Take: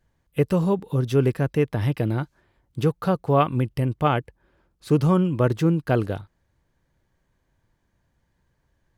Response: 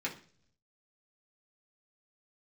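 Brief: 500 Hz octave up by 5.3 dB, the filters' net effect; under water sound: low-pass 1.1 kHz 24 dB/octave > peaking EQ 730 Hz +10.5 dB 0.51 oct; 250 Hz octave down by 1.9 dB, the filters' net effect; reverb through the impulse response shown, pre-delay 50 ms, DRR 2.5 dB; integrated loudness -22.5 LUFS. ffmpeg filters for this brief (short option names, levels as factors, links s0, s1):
-filter_complex "[0:a]equalizer=f=250:t=o:g=-5,equalizer=f=500:t=o:g=4.5,asplit=2[s0][s1];[1:a]atrim=start_sample=2205,adelay=50[s2];[s1][s2]afir=irnorm=-1:irlink=0,volume=0.473[s3];[s0][s3]amix=inputs=2:normalize=0,lowpass=f=1100:w=0.5412,lowpass=f=1100:w=1.3066,equalizer=f=730:t=o:w=0.51:g=10.5,volume=0.668"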